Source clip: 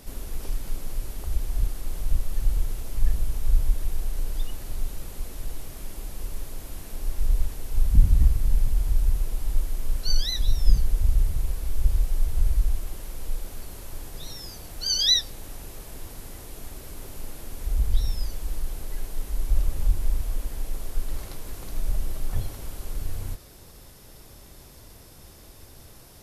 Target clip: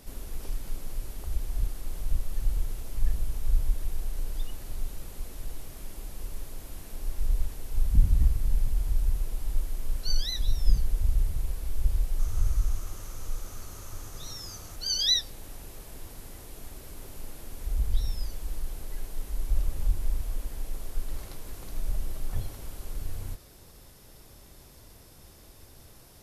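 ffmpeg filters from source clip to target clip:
ffmpeg -i in.wav -filter_complex "[0:a]asettb=1/sr,asplit=3[link_01][link_02][link_03];[link_01]atrim=end=12.194[link_04];[link_02]atrim=start=12.19:end=14.76,asetpts=PTS-STARTPTS,afade=type=in:duration=0.004:curve=qsin,afade=type=out:start_time=2.566:duration=0.004:curve=qsin,equalizer=frequency=100:width_type=o:width=0.33:gain=8,equalizer=frequency=1250:width_type=o:width=0.33:gain=10,equalizer=frequency=6300:width_type=o:width=0.33:gain=10[link_05];[link_03]atrim=start=14.756[link_06];[link_04][link_05]acrossfade=duration=0.004:curve1=hsin:curve2=qsin[link_07];[link_07][link_06]acrossfade=duration=0.004:curve1=qsin:curve2=hsin,volume=-4dB" out.wav

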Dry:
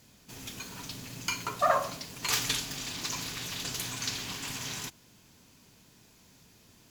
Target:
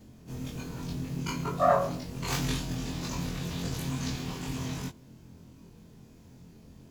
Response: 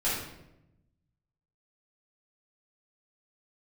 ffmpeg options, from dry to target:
-af "afftfilt=real='re':imag='-im':win_size=2048:overlap=0.75,tiltshelf=frequency=820:gain=9.5,acompressor=mode=upward:threshold=-57dB:ratio=2.5,volume=6.5dB"

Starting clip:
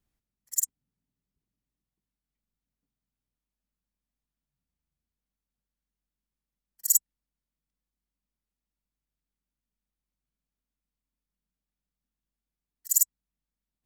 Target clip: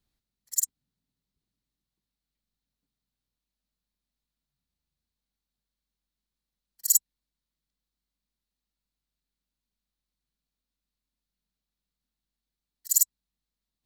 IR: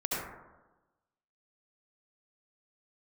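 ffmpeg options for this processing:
-af "equalizer=frequency=4100:width_type=o:width=0.54:gain=9.5"

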